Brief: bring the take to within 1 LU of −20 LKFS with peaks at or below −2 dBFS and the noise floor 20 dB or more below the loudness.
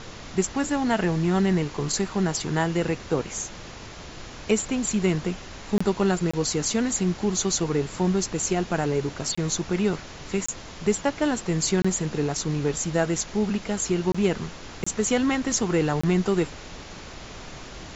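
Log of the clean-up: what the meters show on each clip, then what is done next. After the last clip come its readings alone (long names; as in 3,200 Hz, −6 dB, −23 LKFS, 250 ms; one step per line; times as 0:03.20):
number of dropouts 8; longest dropout 25 ms; background noise floor −41 dBFS; target noise floor −46 dBFS; integrated loudness −25.5 LKFS; sample peak −10.0 dBFS; target loudness −20.0 LKFS
→ repair the gap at 0:05.78/0:06.31/0:09.35/0:10.46/0:11.82/0:14.12/0:14.84/0:16.01, 25 ms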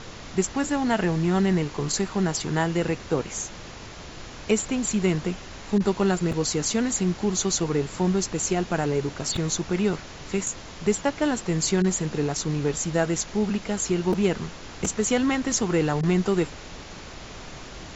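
number of dropouts 0; background noise floor −41 dBFS; target noise floor −45 dBFS
→ noise reduction from a noise print 6 dB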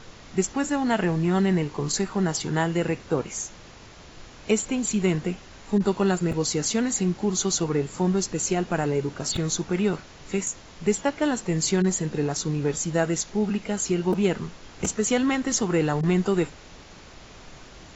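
background noise floor −47 dBFS; integrated loudness −25.0 LKFS; sample peak −10.5 dBFS; target loudness −20.0 LKFS
→ level +5 dB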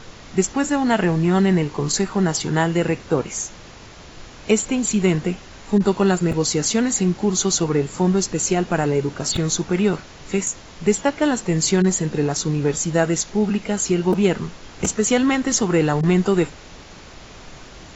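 integrated loudness −20.0 LKFS; sample peak −5.5 dBFS; background noise floor −42 dBFS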